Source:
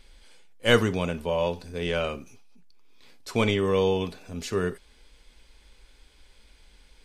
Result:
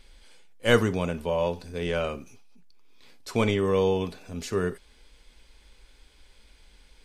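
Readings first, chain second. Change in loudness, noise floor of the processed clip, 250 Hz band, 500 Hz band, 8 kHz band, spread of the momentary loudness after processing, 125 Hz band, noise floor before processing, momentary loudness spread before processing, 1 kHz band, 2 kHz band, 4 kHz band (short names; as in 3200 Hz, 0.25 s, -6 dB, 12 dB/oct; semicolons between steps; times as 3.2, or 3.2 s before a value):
-0.5 dB, -58 dBFS, 0.0 dB, 0.0 dB, -0.5 dB, 13 LU, 0.0 dB, -58 dBFS, 12 LU, -0.5 dB, -1.5 dB, -3.5 dB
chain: dynamic EQ 3200 Hz, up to -4 dB, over -41 dBFS, Q 1.1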